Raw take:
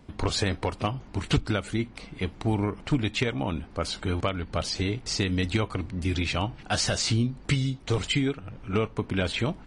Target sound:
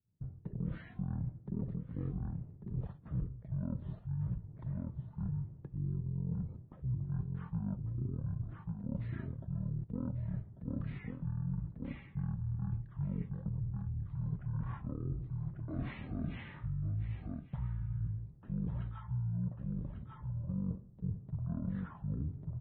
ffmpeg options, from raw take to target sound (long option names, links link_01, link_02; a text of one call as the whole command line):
ffmpeg -i in.wav -filter_complex "[0:a]asplit=2[link_01][link_02];[link_02]aecho=0:1:489:0.316[link_03];[link_01][link_03]amix=inputs=2:normalize=0,agate=range=-33dB:threshold=-38dB:ratio=3:detection=peak,bandpass=frequency=330:width_type=q:width=2.1:csg=0,asetrate=18846,aresample=44100,areverse,acompressor=threshold=-41dB:ratio=6,areverse,volume=6.5dB" out.wav